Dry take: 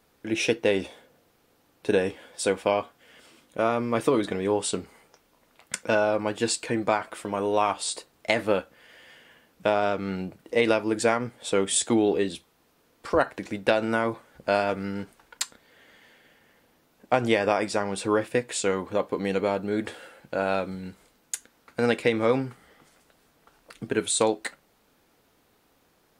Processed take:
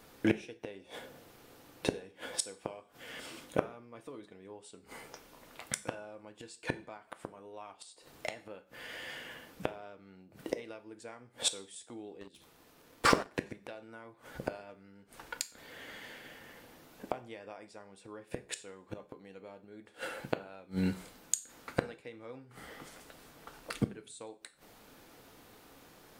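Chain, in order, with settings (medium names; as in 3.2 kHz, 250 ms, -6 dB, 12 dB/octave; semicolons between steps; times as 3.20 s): inverted gate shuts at -23 dBFS, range -32 dB; two-slope reverb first 0.41 s, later 1.5 s, from -28 dB, DRR 11 dB; 12.21–13.27 s: waveshaping leveller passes 2; trim +7 dB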